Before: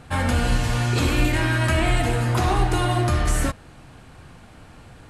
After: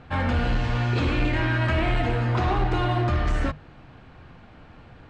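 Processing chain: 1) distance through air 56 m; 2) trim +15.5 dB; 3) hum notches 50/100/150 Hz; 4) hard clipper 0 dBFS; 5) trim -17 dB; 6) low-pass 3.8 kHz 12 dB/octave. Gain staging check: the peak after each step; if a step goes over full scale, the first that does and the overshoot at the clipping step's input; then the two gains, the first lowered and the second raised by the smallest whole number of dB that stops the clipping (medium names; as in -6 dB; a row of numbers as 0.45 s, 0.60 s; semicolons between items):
-8.5 dBFS, +7.0 dBFS, +7.0 dBFS, 0.0 dBFS, -17.0 dBFS, -16.5 dBFS; step 2, 7.0 dB; step 2 +8.5 dB, step 5 -10 dB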